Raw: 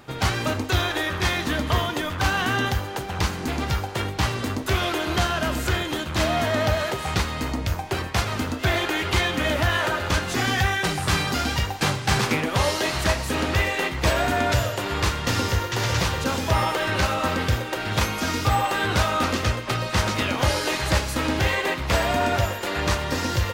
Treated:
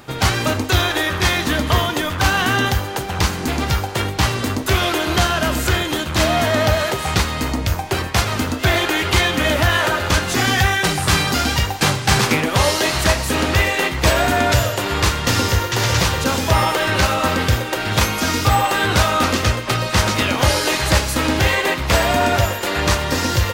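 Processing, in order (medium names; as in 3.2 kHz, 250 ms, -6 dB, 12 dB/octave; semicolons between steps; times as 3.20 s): treble shelf 5.4 kHz +4.5 dB; trim +5.5 dB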